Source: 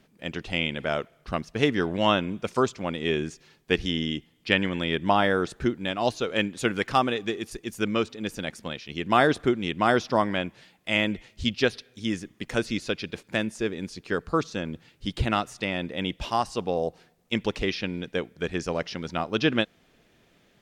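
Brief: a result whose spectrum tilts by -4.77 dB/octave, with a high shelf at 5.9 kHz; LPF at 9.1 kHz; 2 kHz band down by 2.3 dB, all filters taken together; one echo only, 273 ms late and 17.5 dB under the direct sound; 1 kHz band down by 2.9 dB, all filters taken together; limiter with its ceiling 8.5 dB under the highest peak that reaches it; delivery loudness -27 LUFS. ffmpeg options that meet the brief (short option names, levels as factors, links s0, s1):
-af "lowpass=9100,equalizer=f=1000:t=o:g=-3.5,equalizer=f=2000:t=o:g=-3,highshelf=f=5900:g=8.5,alimiter=limit=0.2:level=0:latency=1,aecho=1:1:273:0.133,volume=1.33"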